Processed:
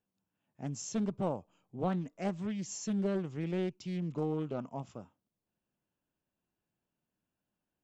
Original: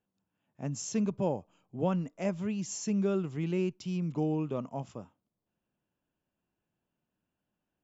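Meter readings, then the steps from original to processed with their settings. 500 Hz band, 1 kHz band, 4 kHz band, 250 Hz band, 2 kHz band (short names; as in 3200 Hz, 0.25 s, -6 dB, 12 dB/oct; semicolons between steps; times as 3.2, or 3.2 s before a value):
-3.5 dB, -1.0 dB, -2.5 dB, -3.0 dB, -2.0 dB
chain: Doppler distortion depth 0.41 ms; gain -3 dB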